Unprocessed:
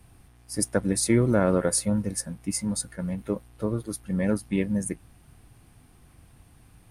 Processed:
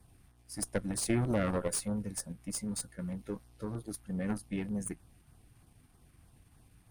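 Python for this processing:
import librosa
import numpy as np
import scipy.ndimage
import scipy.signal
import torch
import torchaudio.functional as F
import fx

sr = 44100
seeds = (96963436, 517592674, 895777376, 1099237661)

p1 = fx.peak_eq(x, sr, hz=5200.0, db=5.5, octaves=0.77, at=(3.17, 3.75))
p2 = fx.level_steps(p1, sr, step_db=11)
p3 = p1 + F.gain(torch.from_numpy(p2), 0.5).numpy()
p4 = fx.tube_stage(p3, sr, drive_db=12.0, bias=0.75)
p5 = fx.filter_lfo_notch(p4, sr, shape='saw_down', hz=3.2, low_hz=330.0, high_hz=3000.0, q=2.0)
y = F.gain(torch.from_numpy(p5), -7.5).numpy()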